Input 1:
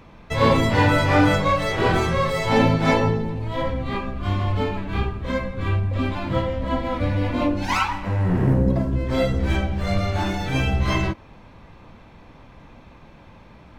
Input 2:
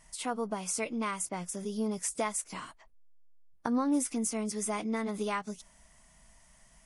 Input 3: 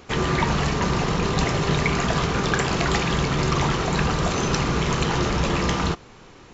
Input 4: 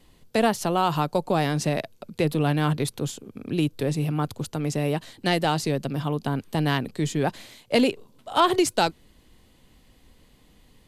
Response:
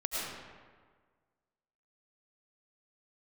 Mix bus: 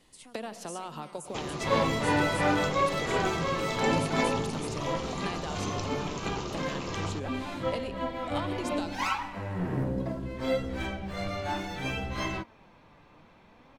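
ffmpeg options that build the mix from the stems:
-filter_complex "[0:a]flanger=delay=3.6:depth=3.3:regen=69:speed=0.64:shape=sinusoidal,adelay=1300,volume=-3dB[link_01];[1:a]acrossover=split=280|3000[link_02][link_03][link_04];[link_03]acompressor=threshold=-46dB:ratio=6[link_05];[link_02][link_05][link_04]amix=inputs=3:normalize=0,volume=-12dB,asplit=2[link_06][link_07];[link_07]volume=-22dB[link_08];[2:a]equalizer=frequency=1700:width_type=o:width=0.65:gain=-11.5,acompressor=threshold=-27dB:ratio=6,adelay=1250,volume=-4dB[link_09];[3:a]lowpass=9800,acompressor=threshold=-30dB:ratio=16,volume=-4dB,asplit=2[link_10][link_11];[link_11]volume=-15.5dB[link_12];[4:a]atrim=start_sample=2205[link_13];[link_08][link_12]amix=inputs=2:normalize=0[link_14];[link_14][link_13]afir=irnorm=-1:irlink=0[link_15];[link_01][link_06][link_09][link_10][link_15]amix=inputs=5:normalize=0,lowshelf=frequency=140:gain=-10.5"

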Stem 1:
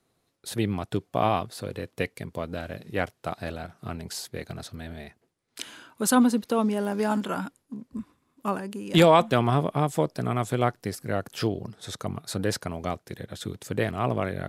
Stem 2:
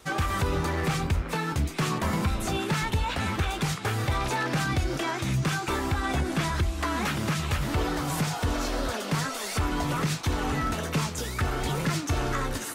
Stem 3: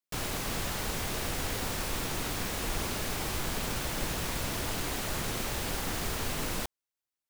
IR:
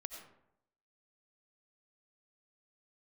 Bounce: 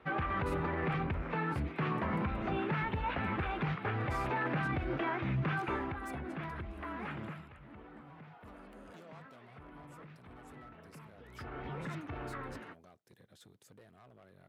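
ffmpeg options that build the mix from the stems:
-filter_complex "[0:a]acompressor=threshold=-32dB:ratio=3,asoftclip=type=tanh:threshold=-32.5dB,volume=-19dB[link_01];[1:a]lowpass=frequency=2500:width=0.5412,lowpass=frequency=2500:width=1.3066,alimiter=limit=-21.5dB:level=0:latency=1:release=18,volume=8dB,afade=type=out:start_time=5.7:duration=0.3:silence=0.446684,afade=type=out:start_time=7.19:duration=0.28:silence=0.251189,afade=type=in:start_time=11.18:duration=0.46:silence=0.251189[link_02];[link_01][link_02]amix=inputs=2:normalize=0,highpass=55,equalizer=frequency=85:width_type=o:width=0.77:gain=-4.5"

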